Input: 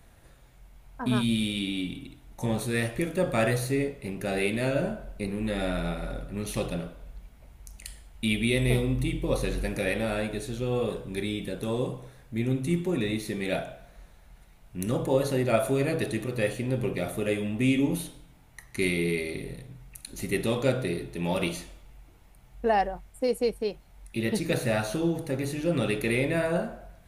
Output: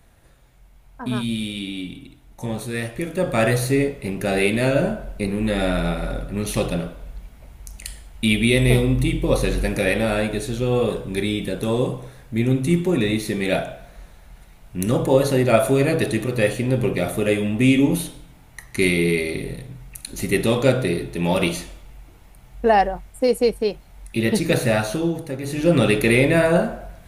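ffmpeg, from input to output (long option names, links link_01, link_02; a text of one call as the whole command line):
ffmpeg -i in.wav -af "volume=18dB,afade=type=in:start_time=2.95:duration=0.73:silence=0.446684,afade=type=out:start_time=24.62:duration=0.79:silence=0.398107,afade=type=in:start_time=25.41:duration=0.26:silence=0.316228" out.wav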